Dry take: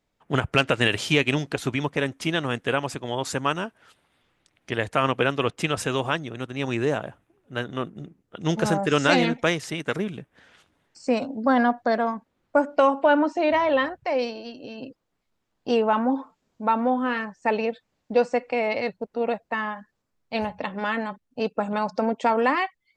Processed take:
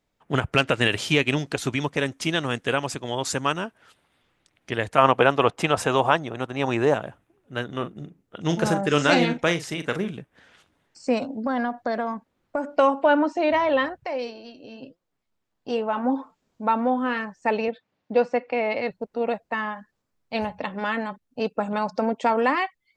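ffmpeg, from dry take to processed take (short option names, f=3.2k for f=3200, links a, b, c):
-filter_complex "[0:a]asettb=1/sr,asplit=3[a][b][c];[a]atrim=end=1.464[d];[b]atrim=start=1.46:end=3.52,asetpts=PTS-STARTPTS,afade=t=in:d=0.004:c=qsin,afade=t=out:st=2.056:d=0.004:c=qsin,equalizer=f=6.4k:w=0.79:g=5[e];[c]atrim=start=3.516[f];[d][e]acrossfade=d=0.004:c1=hsin:c2=qsin[g];[g][f]acrossfade=d=0.004:c1=qsin:c2=hsin,asettb=1/sr,asplit=3[h][i][j];[h]atrim=end=4.984[k];[i]atrim=start=4.98:end=6.94,asetpts=PTS-STARTPTS,afade=t=in:d=0.004:c=qsin,afade=t=out:st=1.956:d=0.004:c=qsin,equalizer=f=810:w=0.99:g=10[l];[j]atrim=start=6.936[m];[k][l]acrossfade=d=0.004:c1=hsin:c2=qsin[n];[n][m]acrossfade=d=0.004:c1=qsin:c2=hsin,asettb=1/sr,asplit=3[o][p][q];[o]atrim=end=7.674[r];[p]atrim=start=7.67:end=10.11,asetpts=PTS-STARTPTS,afade=t=in:d=0.004:c=qsin,afade=t=out:st=2.436:d=0.004:c=qsin,asplit=2[s][t];[t]adelay=41,volume=-11dB[u];[s][u]amix=inputs=2:normalize=0,atrim=end_sample=107604[v];[q]atrim=start=10.106[w];[r][v]acrossfade=d=0.004:c1=hsin:c2=qsin[x];[x][w]acrossfade=d=0.004:c1=qsin:c2=hsin,asettb=1/sr,asplit=3[y][z][aa];[y]atrim=end=11.304[ab];[z]atrim=start=11.3:end=12.75,asetpts=PTS-STARTPTS,afade=t=in:d=0.004:c=qsin,afade=t=out:st=1.446:d=0.004:c=qsin,acompressor=threshold=-21dB:ratio=6:attack=3.2:release=140:knee=1:detection=peak[ac];[aa]atrim=start=12.746[ad];[ab][ac]acrossfade=d=0.004:c1=hsin:c2=qsin[ae];[ae][ad]acrossfade=d=0.004:c1=qsin:c2=hsin,asplit=3[af][ag][ah];[af]afade=t=out:st=14.06:d=0.02[ai];[ag]flanger=delay=5.2:depth=5.8:regen=76:speed=1.2:shape=triangular,afade=t=in:st=14.06:d=0.02,afade=t=out:st=16.03:d=0.02[aj];[ah]afade=t=in:st=16.03:d=0.02[ak];[ai][aj][ak]amix=inputs=3:normalize=0,asettb=1/sr,asplit=3[al][am][an];[al]atrim=end=17.684[ao];[am]atrim=start=17.68:end=18.91,asetpts=PTS-STARTPTS,afade=t=in:d=0.004:c=qsin,afade=t=out:st=1.226:d=0.004:c=qsin,highpass=110,lowpass=4k[ap];[an]atrim=start=18.906[aq];[ao][ap]acrossfade=d=0.004:c1=hsin:c2=qsin[ar];[ar][aq]acrossfade=d=0.004:c1=qsin:c2=hsin"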